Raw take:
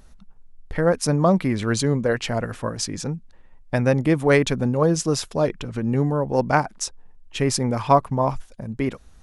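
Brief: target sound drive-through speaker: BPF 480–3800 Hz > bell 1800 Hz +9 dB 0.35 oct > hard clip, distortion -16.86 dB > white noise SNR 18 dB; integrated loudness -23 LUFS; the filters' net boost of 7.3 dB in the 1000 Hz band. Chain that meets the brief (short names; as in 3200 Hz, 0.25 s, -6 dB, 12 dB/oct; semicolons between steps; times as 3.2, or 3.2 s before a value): BPF 480–3800 Hz; bell 1000 Hz +9 dB; bell 1800 Hz +9 dB 0.35 oct; hard clip -4 dBFS; white noise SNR 18 dB; gain -2 dB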